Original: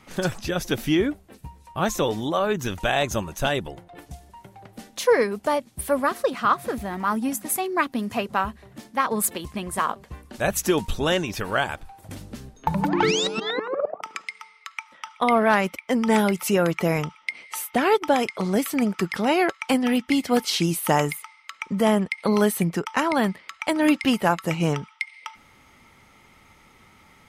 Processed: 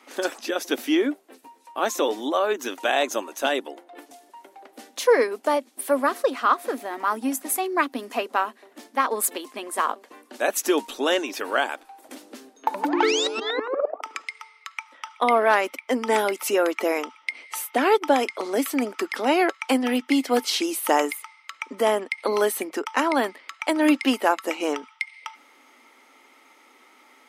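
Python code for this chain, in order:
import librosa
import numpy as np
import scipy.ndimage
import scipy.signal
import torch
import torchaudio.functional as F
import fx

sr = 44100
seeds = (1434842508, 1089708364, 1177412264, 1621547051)

y = scipy.signal.sosfilt(scipy.signal.ellip(4, 1.0, 40, 260.0, 'highpass', fs=sr, output='sos'), x)
y = F.gain(torch.from_numpy(y), 1.0).numpy()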